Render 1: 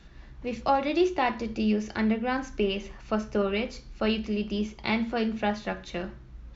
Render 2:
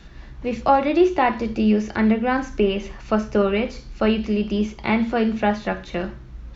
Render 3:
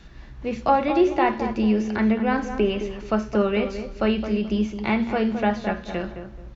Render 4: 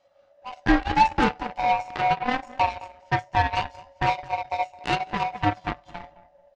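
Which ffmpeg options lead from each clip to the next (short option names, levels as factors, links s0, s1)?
-filter_complex "[0:a]acrossover=split=2600[s0][s1];[s1]acompressor=threshold=0.00355:ratio=4:attack=1:release=60[s2];[s0][s2]amix=inputs=2:normalize=0,volume=2.37"
-filter_complex "[0:a]asplit=2[s0][s1];[s1]adelay=215,lowpass=f=1600:p=1,volume=0.376,asplit=2[s2][s3];[s3]adelay=215,lowpass=f=1600:p=1,volume=0.29,asplit=2[s4][s5];[s5]adelay=215,lowpass=f=1600:p=1,volume=0.29[s6];[s0][s2][s4][s6]amix=inputs=4:normalize=0,volume=0.75"
-af "afftfilt=real='real(if(lt(b,1008),b+24*(1-2*mod(floor(b/24),2)),b),0)':imag='imag(if(lt(b,1008),b+24*(1-2*mod(floor(b/24),2)),b),0)':win_size=2048:overlap=0.75,aeval=exprs='0.473*(cos(1*acos(clip(val(0)/0.473,-1,1)))-cos(1*PI/2))+0.0596*(cos(7*acos(clip(val(0)/0.473,-1,1)))-cos(7*PI/2))':c=same"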